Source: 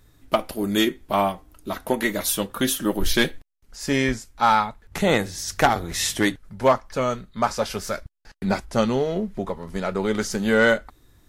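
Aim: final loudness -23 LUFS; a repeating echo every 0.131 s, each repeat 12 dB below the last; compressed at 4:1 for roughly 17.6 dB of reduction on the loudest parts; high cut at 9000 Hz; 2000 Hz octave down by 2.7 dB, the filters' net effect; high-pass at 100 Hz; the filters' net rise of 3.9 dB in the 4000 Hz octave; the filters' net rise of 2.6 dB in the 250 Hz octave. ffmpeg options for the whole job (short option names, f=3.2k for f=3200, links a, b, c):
-af "highpass=100,lowpass=9k,equalizer=f=250:t=o:g=3.5,equalizer=f=2k:t=o:g=-5,equalizer=f=4k:t=o:g=6.5,acompressor=threshold=-35dB:ratio=4,aecho=1:1:131|262|393:0.251|0.0628|0.0157,volume=13.5dB"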